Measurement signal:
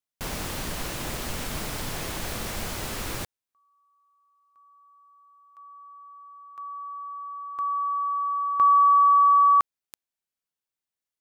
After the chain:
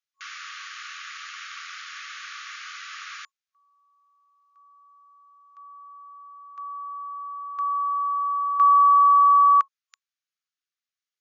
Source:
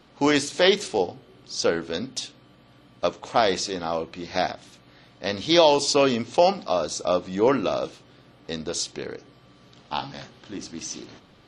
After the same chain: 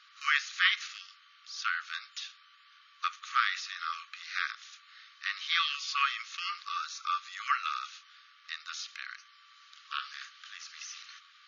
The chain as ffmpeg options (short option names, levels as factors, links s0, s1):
-filter_complex "[0:a]afftfilt=real='re*between(b*sr/4096,1100,7000)':imag='im*between(b*sr/4096,1100,7000)':win_size=4096:overlap=0.75,tremolo=f=84:d=0.182,acrossover=split=2900[s0][s1];[s1]acompressor=threshold=0.00447:ratio=4:attack=1:release=60[s2];[s0][s2]amix=inputs=2:normalize=0,volume=1.33"